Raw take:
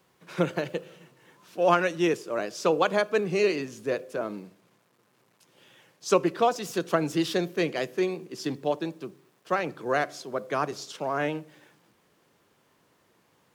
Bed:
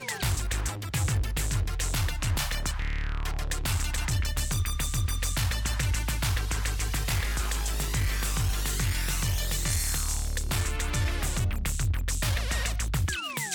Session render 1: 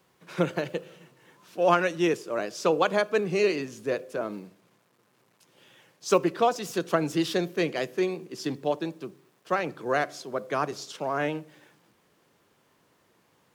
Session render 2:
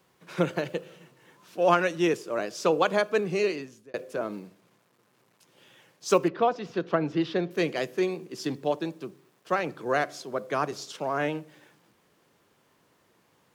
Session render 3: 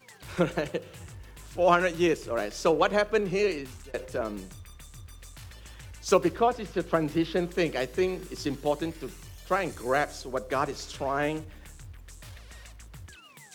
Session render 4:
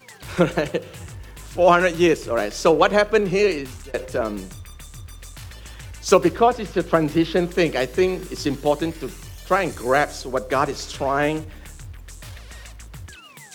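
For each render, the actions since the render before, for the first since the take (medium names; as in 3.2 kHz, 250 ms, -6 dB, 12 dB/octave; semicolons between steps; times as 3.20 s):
4.32–6.26 s: block-companded coder 7-bit
3.03–3.94 s: fade out equal-power; 6.28–7.51 s: distance through air 250 m
add bed -18.5 dB
trim +7.5 dB; peak limiter -2 dBFS, peak gain reduction 2.5 dB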